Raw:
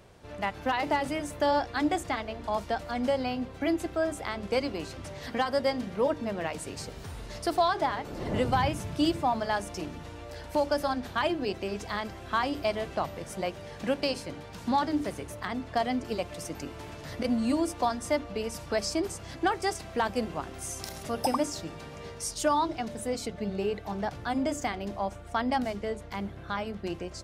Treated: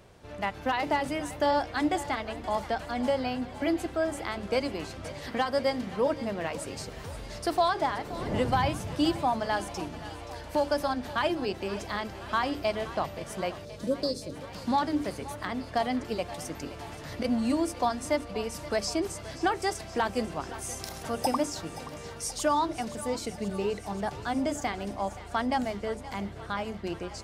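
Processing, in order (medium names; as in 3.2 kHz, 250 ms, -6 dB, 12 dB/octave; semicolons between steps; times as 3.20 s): spectral selection erased 13.65–14.35 s, 660–3400 Hz; on a send: thinning echo 525 ms, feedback 75%, high-pass 420 Hz, level -15 dB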